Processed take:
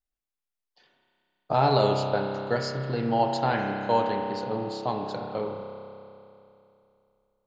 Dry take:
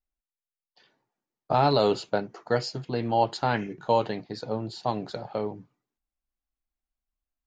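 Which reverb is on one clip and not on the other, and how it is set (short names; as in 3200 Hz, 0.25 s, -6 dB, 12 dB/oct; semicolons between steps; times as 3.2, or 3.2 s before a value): spring tank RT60 2.8 s, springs 30 ms, chirp 55 ms, DRR 1.5 dB; gain -1.5 dB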